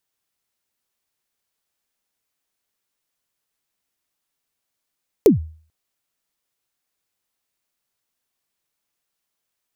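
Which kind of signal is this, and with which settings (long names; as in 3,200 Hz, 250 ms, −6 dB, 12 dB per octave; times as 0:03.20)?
synth kick length 0.44 s, from 480 Hz, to 79 Hz, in 129 ms, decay 0.44 s, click on, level −4.5 dB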